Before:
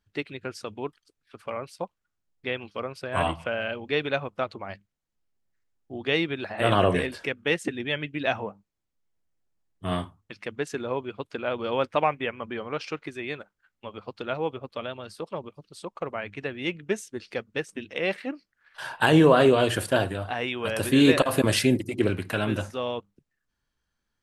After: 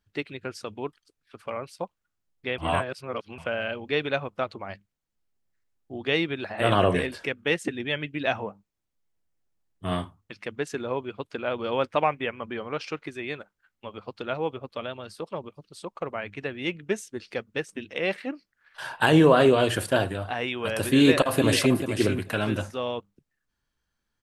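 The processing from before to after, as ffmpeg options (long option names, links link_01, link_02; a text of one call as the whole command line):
ffmpeg -i in.wav -filter_complex "[0:a]asplit=2[link_01][link_02];[link_02]afade=type=in:start_time=20.97:duration=0.01,afade=type=out:start_time=21.79:duration=0.01,aecho=0:1:440|880:0.334965|0.0334965[link_03];[link_01][link_03]amix=inputs=2:normalize=0,asplit=3[link_04][link_05][link_06];[link_04]atrim=end=2.582[link_07];[link_05]atrim=start=2.578:end=3.382,asetpts=PTS-STARTPTS,areverse[link_08];[link_06]atrim=start=3.378[link_09];[link_07][link_08]acrossfade=duration=0.004:curve1=hsin:curve2=hsin[link_10];[link_10][link_09]acrossfade=duration=0.004:curve1=hsin:curve2=hsin" out.wav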